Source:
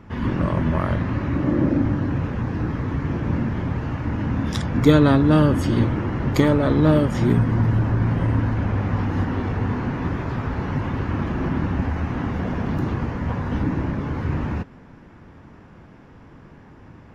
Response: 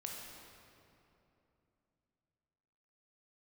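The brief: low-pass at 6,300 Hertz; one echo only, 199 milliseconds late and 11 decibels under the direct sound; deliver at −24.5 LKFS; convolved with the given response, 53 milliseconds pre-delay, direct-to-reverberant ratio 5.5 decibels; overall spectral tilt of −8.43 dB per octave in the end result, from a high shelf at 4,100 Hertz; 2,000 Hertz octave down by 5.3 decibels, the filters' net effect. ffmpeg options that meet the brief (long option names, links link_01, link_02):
-filter_complex "[0:a]lowpass=6300,equalizer=frequency=2000:width_type=o:gain=-6,highshelf=frequency=4100:gain=-5.5,aecho=1:1:199:0.282,asplit=2[link_01][link_02];[1:a]atrim=start_sample=2205,adelay=53[link_03];[link_02][link_03]afir=irnorm=-1:irlink=0,volume=-4dB[link_04];[link_01][link_04]amix=inputs=2:normalize=0,volume=-4dB"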